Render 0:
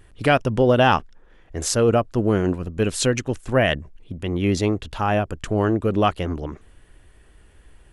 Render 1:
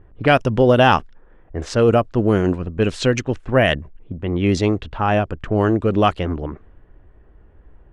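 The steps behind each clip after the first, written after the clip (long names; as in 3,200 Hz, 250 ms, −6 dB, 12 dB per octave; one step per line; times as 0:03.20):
low-pass that shuts in the quiet parts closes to 980 Hz, open at −13.5 dBFS
level +3 dB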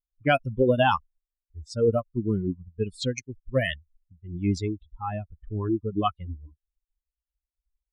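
spectral dynamics exaggerated over time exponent 3
level −3 dB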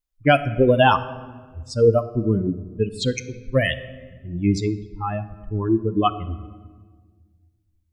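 rectangular room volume 1,400 cubic metres, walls mixed, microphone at 0.45 metres
level +5.5 dB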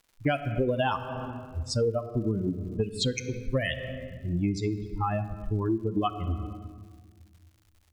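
downward compressor 6 to 1, threshold −27 dBFS, peak gain reduction 16 dB
surface crackle 180 per second −53 dBFS
level +2.5 dB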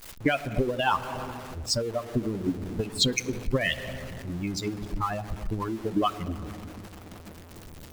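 converter with a step at zero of −38.5 dBFS
harmonic and percussive parts rebalanced harmonic −14 dB
level +6 dB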